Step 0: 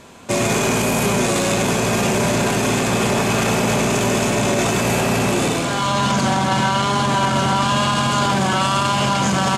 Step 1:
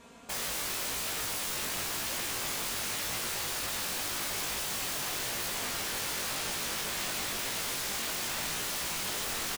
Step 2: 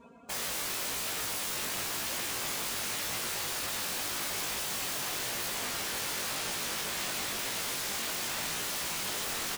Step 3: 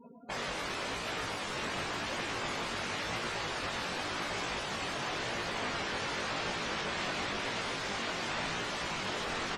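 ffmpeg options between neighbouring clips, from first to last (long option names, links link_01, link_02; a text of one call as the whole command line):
ffmpeg -i in.wav -af "aecho=1:1:4.3:0.64,aeval=exprs='(mod(7.5*val(0)+1,2)-1)/7.5':channel_layout=same,flanger=delay=17:depth=5.1:speed=0.92,volume=-9dB" out.wav
ffmpeg -i in.wav -af "afftdn=noise_reduction=19:noise_floor=-52,lowshelf=frequency=63:gain=-7,areverse,acompressor=mode=upward:threshold=-43dB:ratio=2.5,areverse" out.wav
ffmpeg -i in.wav -af "lowpass=frequency=2400:poles=1,afftdn=noise_reduction=35:noise_floor=-48,volume=4.5dB" out.wav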